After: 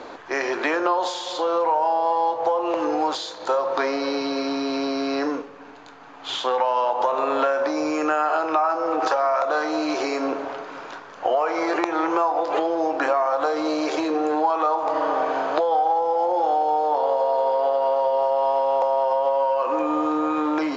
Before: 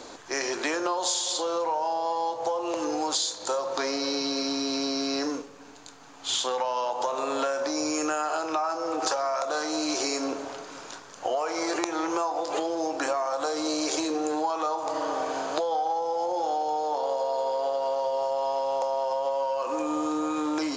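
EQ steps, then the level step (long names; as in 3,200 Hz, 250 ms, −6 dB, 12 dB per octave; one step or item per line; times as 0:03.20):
low-pass filter 2,300 Hz 12 dB per octave
low-shelf EQ 270 Hz −8 dB
+8.0 dB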